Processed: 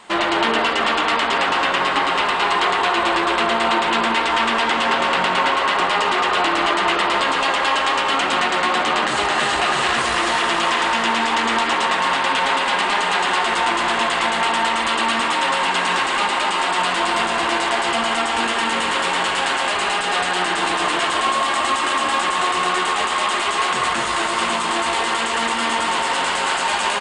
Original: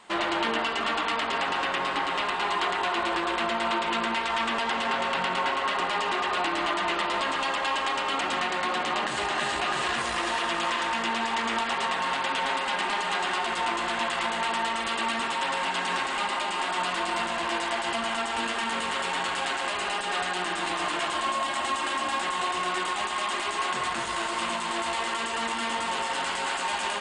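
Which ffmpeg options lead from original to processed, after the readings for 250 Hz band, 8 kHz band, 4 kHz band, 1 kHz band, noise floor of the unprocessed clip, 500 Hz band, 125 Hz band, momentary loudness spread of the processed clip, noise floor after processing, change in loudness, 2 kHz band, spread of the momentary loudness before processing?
+8.5 dB, +9.0 dB, +9.0 dB, +9.0 dB, -31 dBFS, +9.0 dB, +8.5 dB, 2 LU, -21 dBFS, +9.0 dB, +9.0 dB, 2 LU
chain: -filter_complex "[0:a]asplit=8[s0][s1][s2][s3][s4][s5][s6][s7];[s1]adelay=226,afreqshift=82,volume=0.422[s8];[s2]adelay=452,afreqshift=164,volume=0.24[s9];[s3]adelay=678,afreqshift=246,volume=0.136[s10];[s4]adelay=904,afreqshift=328,volume=0.0785[s11];[s5]adelay=1130,afreqshift=410,volume=0.0447[s12];[s6]adelay=1356,afreqshift=492,volume=0.0254[s13];[s7]adelay=1582,afreqshift=574,volume=0.0145[s14];[s0][s8][s9][s10][s11][s12][s13][s14]amix=inputs=8:normalize=0,volume=2.51"

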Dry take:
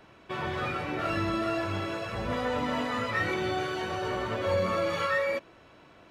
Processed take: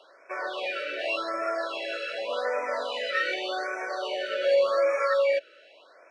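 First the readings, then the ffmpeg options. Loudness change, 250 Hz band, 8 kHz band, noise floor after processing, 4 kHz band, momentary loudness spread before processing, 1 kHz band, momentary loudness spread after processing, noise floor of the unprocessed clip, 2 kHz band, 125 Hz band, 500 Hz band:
+2.5 dB, -11.5 dB, -1.0 dB, -56 dBFS, +4.0 dB, 6 LU, -0.5 dB, 9 LU, -56 dBFS, +2.0 dB, under -35 dB, +5.0 dB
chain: -af "highpass=f=450:w=0.5412,highpass=f=450:w=1.3066,equalizer=f=570:t=q:w=4:g=8,equalizer=f=870:t=q:w=4:g=-4,equalizer=f=1500:t=q:w=4:g=5,equalizer=f=2800:t=q:w=4:g=9,equalizer=f=4200:t=q:w=4:g=7,equalizer=f=7100:t=q:w=4:g=-3,lowpass=f=9600:w=0.5412,lowpass=f=9600:w=1.3066,afftfilt=real='re*(1-between(b*sr/1024,870*pow(3700/870,0.5+0.5*sin(2*PI*0.86*pts/sr))/1.41,870*pow(3700/870,0.5+0.5*sin(2*PI*0.86*pts/sr))*1.41))':imag='im*(1-between(b*sr/1024,870*pow(3700/870,0.5+0.5*sin(2*PI*0.86*pts/sr))/1.41,870*pow(3700/870,0.5+0.5*sin(2*PI*0.86*pts/sr))*1.41))':win_size=1024:overlap=0.75"

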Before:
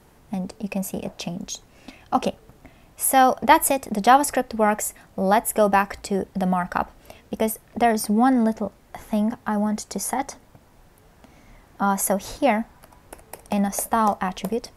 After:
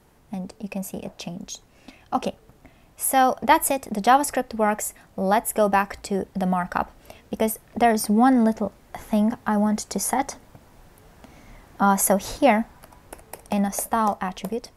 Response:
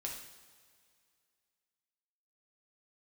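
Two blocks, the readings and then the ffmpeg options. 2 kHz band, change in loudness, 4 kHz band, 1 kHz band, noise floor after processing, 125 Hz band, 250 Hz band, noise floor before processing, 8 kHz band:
-1.0 dB, 0.0 dB, -1.0 dB, -1.0 dB, -55 dBFS, -0.5 dB, +0.5 dB, -54 dBFS, -0.5 dB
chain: -af "dynaudnorm=f=590:g=9:m=3.76,volume=0.668"

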